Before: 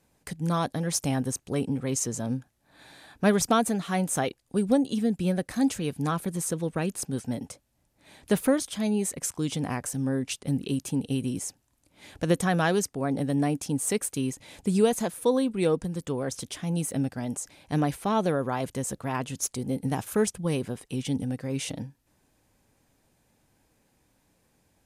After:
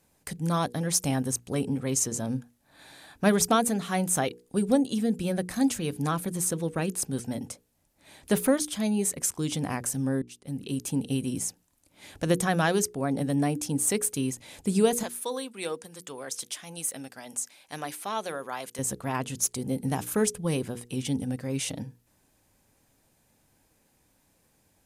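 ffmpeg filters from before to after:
ffmpeg -i in.wav -filter_complex "[0:a]asettb=1/sr,asplit=3[link_01][link_02][link_03];[link_01]atrim=end=15.034[link_04];[link_02]atrim=start=15.03:end=18.79,asetpts=PTS-STARTPTS,afade=type=in:duration=0.004:curve=qsin,afade=type=out:start_time=3.756:duration=0.004:curve=qsin,highpass=frequency=1200:poles=1[link_05];[link_03]atrim=start=18.786[link_06];[link_04][link_05]acrossfade=duration=0.004:curve1=hsin:curve2=qsin[link_07];[link_07][link_06]acrossfade=duration=0.004:curve1=qsin:curve2=hsin,asplit=2[link_08][link_09];[link_08]atrim=end=10.22,asetpts=PTS-STARTPTS,afade=type=out:start_time=10.216:duration=0.004:curve=hsin[link_10];[link_09]atrim=start=10.22,asetpts=PTS-STARTPTS,afade=type=in:duration=0.69[link_11];[link_10][link_11]concat=n=2:v=0:a=1,highshelf=frequency=7200:gain=6,bandreject=frequency=60:width_type=h:width=6,bandreject=frequency=120:width_type=h:width=6,bandreject=frequency=180:width_type=h:width=6,bandreject=frequency=240:width_type=h:width=6,bandreject=frequency=300:width_type=h:width=6,bandreject=frequency=360:width_type=h:width=6,bandreject=frequency=420:width_type=h:width=6,bandreject=frequency=480:width_type=h:width=6" out.wav

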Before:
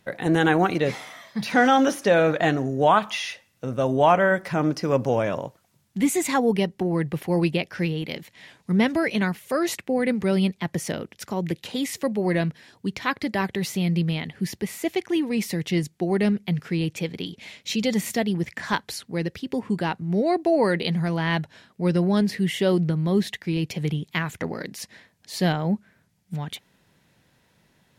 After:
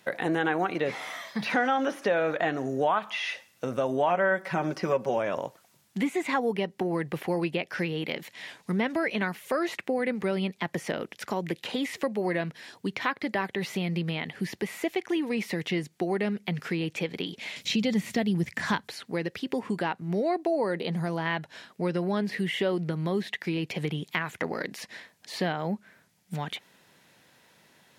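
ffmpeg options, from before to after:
ffmpeg -i in.wav -filter_complex "[0:a]asettb=1/sr,asplit=3[link_01][link_02][link_03];[link_01]atrim=end=4.084[link_04];[link_02]atrim=start=4.08:end=5.18,asetpts=PTS-STARTPTS,afade=type=in:duration=0.004:curve=qsin,afade=type=out:start_time=1.096:duration=0.004:curve=qsin,aecho=1:1:5.3:0.65,atrim=end_sample=48510[link_05];[link_03]atrim=start=5.176[link_06];[link_04][link_05]acrossfade=duration=0.004:curve1=hsin:curve2=qsin[link_07];[link_07][link_06]acrossfade=duration=0.004:curve1=qsin:curve2=hsin,asettb=1/sr,asplit=3[link_08][link_09][link_10];[link_08]atrim=end=17.564[link_11];[link_09]atrim=start=17.56:end=18.88,asetpts=PTS-STARTPTS,afade=type=in:duration=0.004:curve=qsin,afade=type=out:start_time=1.316:duration=0.004:curve=qsin,bass=frequency=250:gain=14,treble=frequency=4000:gain=14[link_12];[link_10]atrim=start=18.876[link_13];[link_11][link_12]acrossfade=duration=0.004:curve1=hsin:curve2=qsin[link_14];[link_14][link_13]acrossfade=duration=0.004:curve1=qsin:curve2=hsin,asettb=1/sr,asplit=3[link_15][link_16][link_17];[link_15]atrim=end=20.474[link_18];[link_16]atrim=start=20.47:end=21.26,asetpts=PTS-STARTPTS,afade=type=in:duration=0.004:curve=qsin,afade=type=out:start_time=0.786:duration=0.004:curve=qsin,equalizer=frequency=2300:width=0.76:gain=-7.5[link_19];[link_17]atrim=start=21.256[link_20];[link_18][link_19]acrossfade=duration=0.004:curve1=hsin:curve2=qsin[link_21];[link_21][link_20]acrossfade=duration=0.004:curve1=qsin:curve2=hsin,acrossover=split=3200[link_22][link_23];[link_23]acompressor=threshold=-49dB:ratio=4:attack=1:release=60[link_24];[link_22][link_24]amix=inputs=2:normalize=0,highpass=frequency=420:poles=1,acompressor=threshold=-33dB:ratio=2.5,volume=5.5dB" out.wav

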